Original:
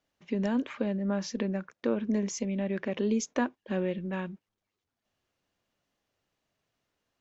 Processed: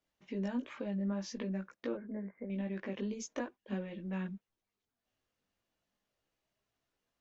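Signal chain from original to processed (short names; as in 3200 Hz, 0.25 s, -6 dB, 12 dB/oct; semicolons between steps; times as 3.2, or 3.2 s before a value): compressor 2:1, threshold -32 dBFS, peak gain reduction 6 dB; 1.95–2.5 rippled Chebyshev low-pass 2200 Hz, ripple 6 dB; chorus voices 6, 0.43 Hz, delay 18 ms, depth 3.2 ms; gain -2 dB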